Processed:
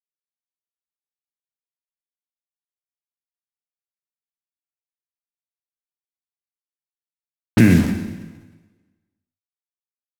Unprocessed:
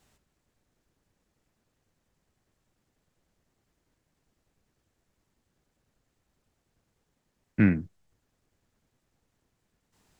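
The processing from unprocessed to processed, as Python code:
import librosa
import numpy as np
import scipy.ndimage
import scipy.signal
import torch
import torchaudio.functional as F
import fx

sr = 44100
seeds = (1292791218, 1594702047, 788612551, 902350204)

p1 = fx.pitch_glide(x, sr, semitones=3.5, runs='ending unshifted')
p2 = fx.low_shelf(p1, sr, hz=110.0, db=5.5)
p3 = fx.over_compress(p2, sr, threshold_db=-27.0, ratio=-0.5)
p4 = p2 + (p3 * librosa.db_to_amplitude(-2.0))
p5 = fx.quant_dither(p4, sr, seeds[0], bits=6, dither='none')
p6 = fx.env_lowpass(p5, sr, base_hz=820.0, full_db=-33.5)
p7 = fx.rev_plate(p6, sr, seeds[1], rt60_s=1.3, hf_ratio=0.95, predelay_ms=0, drr_db=4.0)
p8 = fx.pre_swell(p7, sr, db_per_s=32.0)
y = p8 * librosa.db_to_amplitude(6.0)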